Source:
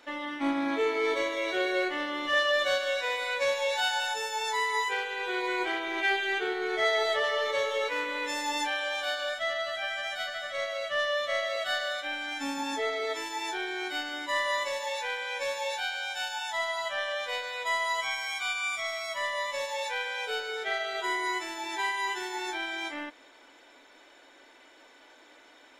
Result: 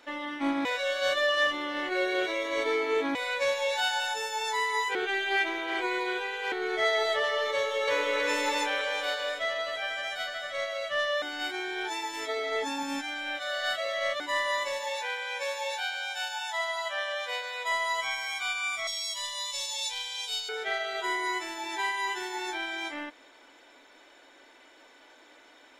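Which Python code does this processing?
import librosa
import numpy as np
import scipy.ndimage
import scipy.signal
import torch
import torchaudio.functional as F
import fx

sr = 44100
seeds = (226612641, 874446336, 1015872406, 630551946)

y = fx.echo_throw(x, sr, start_s=7.55, length_s=0.62, ms=320, feedback_pct=60, wet_db=-0.5)
y = fx.highpass(y, sr, hz=430.0, slope=12, at=(15.02, 17.72))
y = fx.curve_eq(y, sr, hz=(110.0, 330.0, 490.0, 990.0, 1400.0, 2200.0, 3500.0, 7700.0, 14000.0), db=(0, -30, -17, -7, -18, -8, 7, 10, 4), at=(18.87, 20.49))
y = fx.edit(y, sr, fx.reverse_span(start_s=0.65, length_s=2.5),
    fx.reverse_span(start_s=4.95, length_s=1.57),
    fx.reverse_span(start_s=11.22, length_s=2.98), tone=tone)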